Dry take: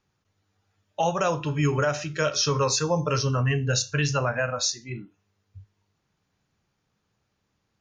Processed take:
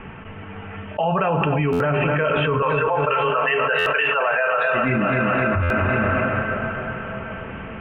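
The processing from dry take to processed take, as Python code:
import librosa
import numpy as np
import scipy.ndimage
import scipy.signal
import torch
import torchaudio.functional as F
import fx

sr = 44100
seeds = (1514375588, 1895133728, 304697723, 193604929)

y = fx.highpass(x, sr, hz=530.0, slope=24, at=(2.62, 4.72))
y = fx.rev_plate(y, sr, seeds[0], rt60_s=4.7, hf_ratio=0.75, predelay_ms=0, drr_db=15.0)
y = fx.rider(y, sr, range_db=10, speed_s=2.0)
y = scipy.signal.sosfilt(scipy.signal.butter(16, 3000.0, 'lowpass', fs=sr, output='sos'), y)
y = y + 0.45 * np.pad(y, (int(4.5 * sr / 1000.0), 0))[:len(y)]
y = fx.echo_feedback(y, sr, ms=256, feedback_pct=53, wet_db=-12.5)
y = fx.buffer_glitch(y, sr, at_s=(1.72, 3.78, 5.62), block=512, repeats=6)
y = fx.env_flatten(y, sr, amount_pct=100)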